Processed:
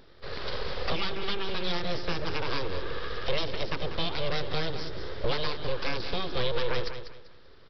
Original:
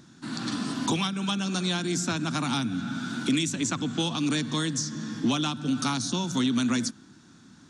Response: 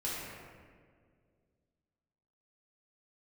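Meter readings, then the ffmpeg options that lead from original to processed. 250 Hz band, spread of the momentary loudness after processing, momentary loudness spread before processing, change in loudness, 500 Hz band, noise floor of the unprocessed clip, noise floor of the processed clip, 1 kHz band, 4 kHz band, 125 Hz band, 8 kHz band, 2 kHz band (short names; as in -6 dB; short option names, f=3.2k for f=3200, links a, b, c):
-14.0 dB, 6 LU, 5 LU, -4.5 dB, +5.0 dB, -53 dBFS, -50 dBFS, -2.0 dB, -2.5 dB, -5.5 dB, -24.5 dB, -0.5 dB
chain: -af "aresample=11025,aeval=exprs='abs(val(0))':c=same,aresample=44100,aecho=1:1:195|390|585:0.316|0.0885|0.0248"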